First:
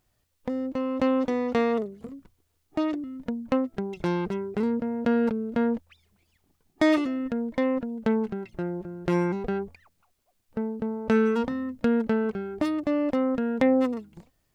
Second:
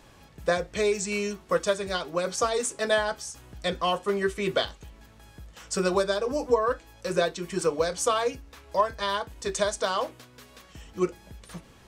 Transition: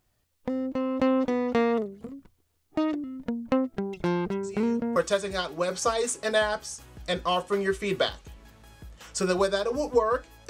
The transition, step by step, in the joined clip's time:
first
0:04.43: mix in second from 0:00.99 0.53 s −15.5 dB
0:04.96: continue with second from 0:01.52

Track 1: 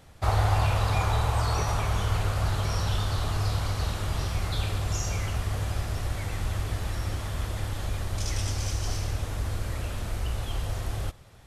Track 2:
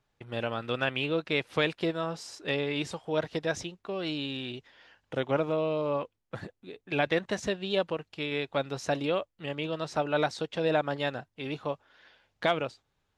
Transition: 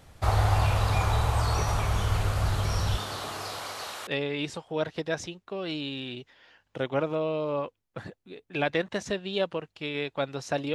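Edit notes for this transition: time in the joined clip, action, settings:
track 1
0:02.96–0:04.07: high-pass filter 190 Hz → 710 Hz
0:04.07: continue with track 2 from 0:02.44

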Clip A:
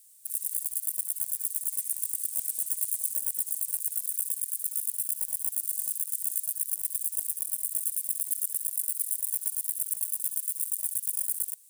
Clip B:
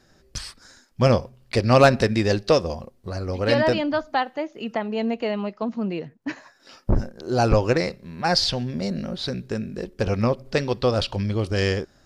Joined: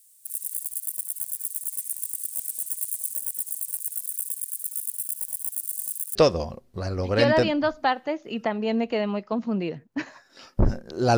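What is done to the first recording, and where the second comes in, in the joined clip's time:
clip A
0:06.15: continue with clip B from 0:02.45

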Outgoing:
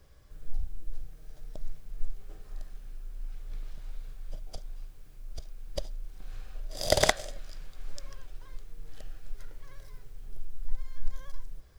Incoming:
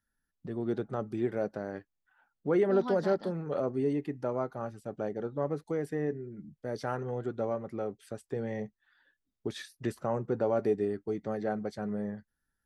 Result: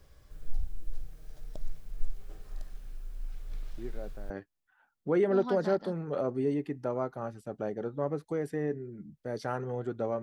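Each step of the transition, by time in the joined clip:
outgoing
0:03.78: mix in incoming from 0:01.17 0.52 s −11.5 dB
0:04.30: continue with incoming from 0:01.69

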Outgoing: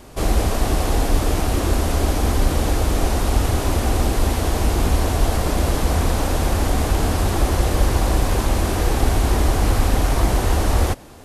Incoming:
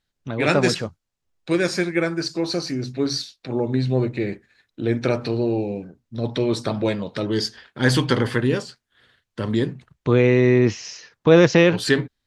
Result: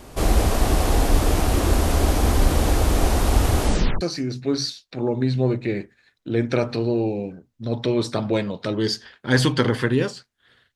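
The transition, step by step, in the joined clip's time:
outgoing
0:03.61: tape stop 0.40 s
0:04.01: continue with incoming from 0:02.53

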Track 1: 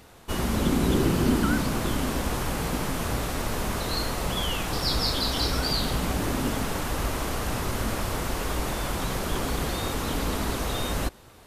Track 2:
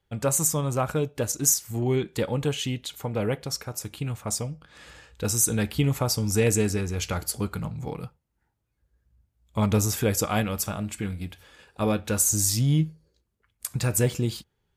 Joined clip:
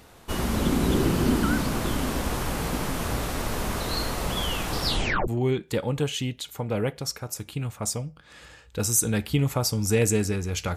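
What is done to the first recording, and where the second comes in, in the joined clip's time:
track 1
0:04.86: tape stop 0.42 s
0:05.28: continue with track 2 from 0:01.73

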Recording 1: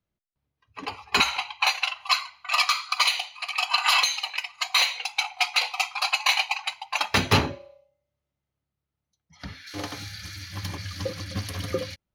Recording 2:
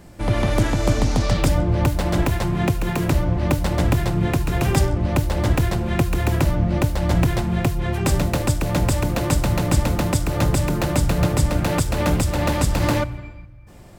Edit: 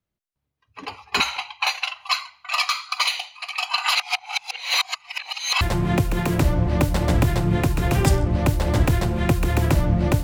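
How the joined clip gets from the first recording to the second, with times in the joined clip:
recording 1
0:03.95–0:05.61: reverse
0:05.61: continue with recording 2 from 0:02.31

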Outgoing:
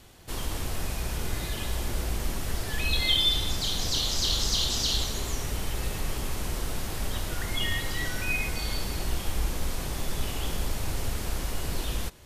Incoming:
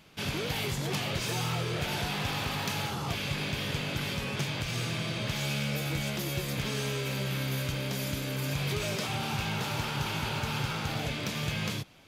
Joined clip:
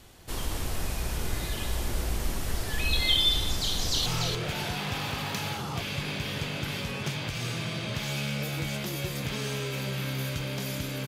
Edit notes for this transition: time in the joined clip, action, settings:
outgoing
0:03.73–0:04.06: delay throw 290 ms, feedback 15%, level −5 dB
0:04.06: continue with incoming from 0:01.39

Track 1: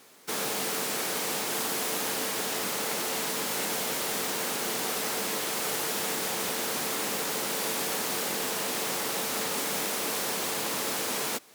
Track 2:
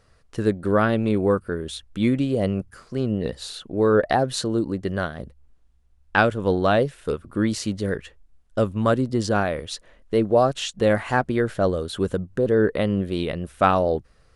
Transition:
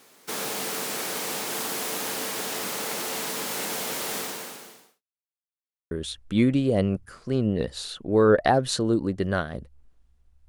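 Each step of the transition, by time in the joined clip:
track 1
0:04.17–0:05.03: fade out quadratic
0:05.03–0:05.91: silence
0:05.91: continue with track 2 from 0:01.56

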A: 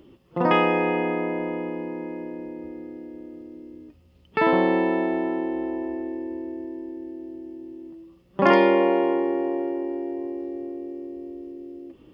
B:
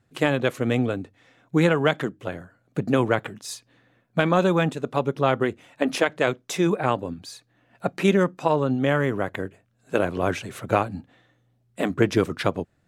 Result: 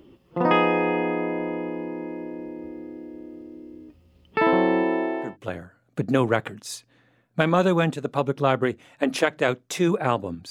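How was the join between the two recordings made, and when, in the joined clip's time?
A
0:04.83–0:05.37: high-pass filter 160 Hz → 690 Hz
0:05.29: continue with B from 0:02.08, crossfade 0.16 s

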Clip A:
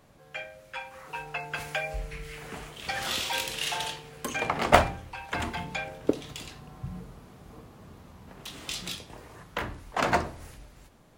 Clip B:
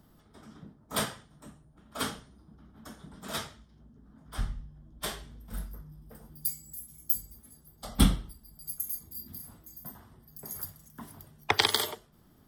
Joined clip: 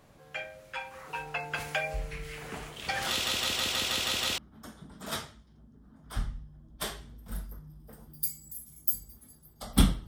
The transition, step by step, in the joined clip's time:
clip A
0:03.10: stutter in place 0.16 s, 8 plays
0:04.38: continue with clip B from 0:02.60

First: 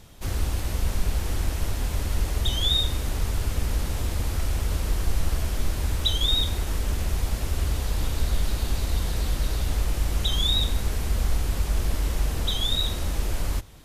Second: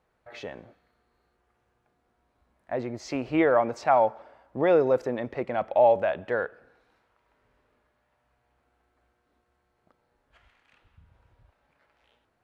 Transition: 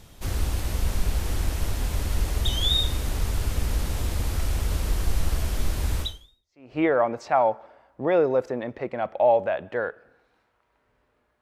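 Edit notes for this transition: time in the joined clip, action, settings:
first
0:06.39: continue with second from 0:02.95, crossfade 0.76 s exponential

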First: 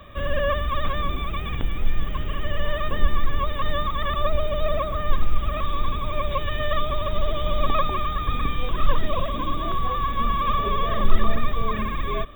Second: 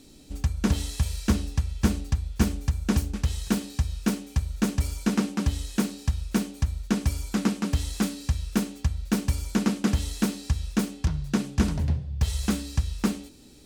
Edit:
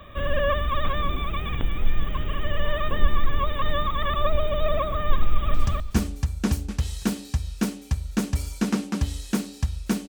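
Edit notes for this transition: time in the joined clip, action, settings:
first
0:05.24–0:05.54: delay throw 260 ms, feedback 15%, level −1 dB
0:05.54: continue with second from 0:01.99

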